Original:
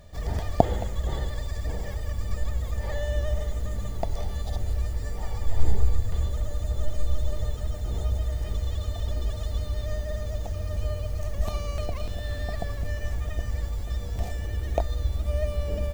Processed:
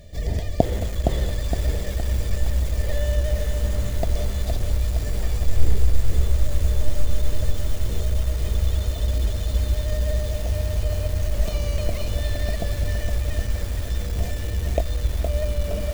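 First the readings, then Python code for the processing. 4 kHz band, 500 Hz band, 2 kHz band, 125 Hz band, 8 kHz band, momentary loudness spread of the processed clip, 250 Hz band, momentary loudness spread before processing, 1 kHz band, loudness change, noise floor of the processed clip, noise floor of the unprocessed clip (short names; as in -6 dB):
+7.0 dB, +4.0 dB, +4.5 dB, +5.5 dB, n/a, 4 LU, +5.0 dB, 5 LU, -1.0 dB, +5.0 dB, -28 dBFS, -33 dBFS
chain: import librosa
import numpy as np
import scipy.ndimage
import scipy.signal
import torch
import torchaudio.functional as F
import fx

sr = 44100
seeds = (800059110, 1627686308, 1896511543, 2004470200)

p1 = fx.band_shelf(x, sr, hz=1100.0, db=-12.0, octaves=1.2)
p2 = fx.rider(p1, sr, range_db=10, speed_s=0.5)
p3 = p1 + (p2 * librosa.db_to_amplitude(3.0))
p4 = fx.echo_crushed(p3, sr, ms=465, feedback_pct=55, bits=5, wet_db=-5.5)
y = p4 * librosa.db_to_amplitude(-3.5)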